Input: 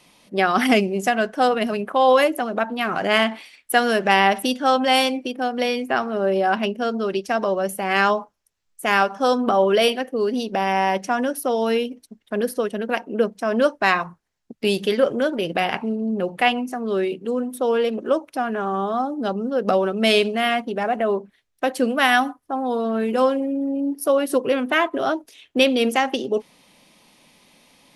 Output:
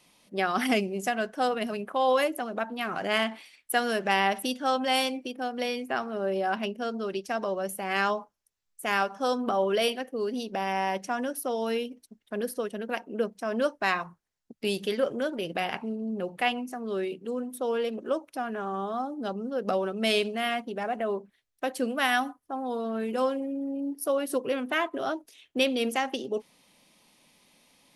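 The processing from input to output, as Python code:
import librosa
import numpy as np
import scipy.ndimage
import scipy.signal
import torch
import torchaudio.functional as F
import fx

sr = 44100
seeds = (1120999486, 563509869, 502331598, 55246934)

y = fx.high_shelf(x, sr, hz=5400.0, db=4.5)
y = F.gain(torch.from_numpy(y), -8.5).numpy()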